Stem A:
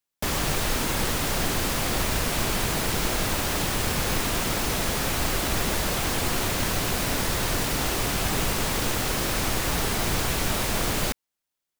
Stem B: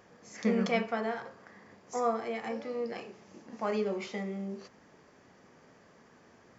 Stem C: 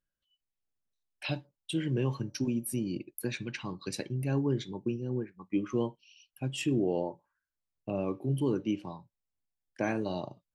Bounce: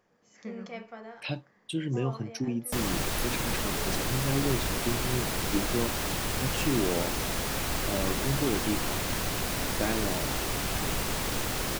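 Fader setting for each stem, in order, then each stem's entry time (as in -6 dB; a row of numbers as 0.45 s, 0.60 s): -5.0 dB, -11.5 dB, 0.0 dB; 2.50 s, 0.00 s, 0.00 s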